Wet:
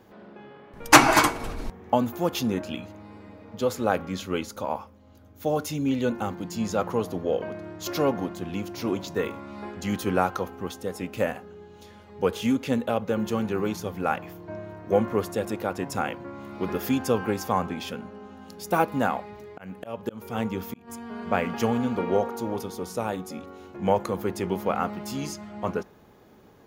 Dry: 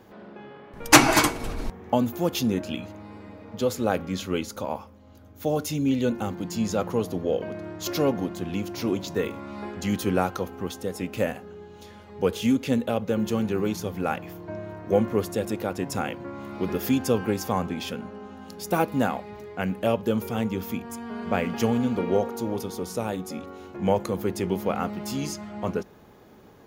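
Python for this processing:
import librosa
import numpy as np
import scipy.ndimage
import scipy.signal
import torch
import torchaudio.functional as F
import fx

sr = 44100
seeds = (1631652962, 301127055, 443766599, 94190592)

y = fx.dynamic_eq(x, sr, hz=1100.0, q=0.73, threshold_db=-38.0, ratio=4.0, max_db=6)
y = fx.auto_swell(y, sr, attack_ms=310.0, at=(18.98, 20.87), fade=0.02)
y = F.gain(torch.from_numpy(y), -2.5).numpy()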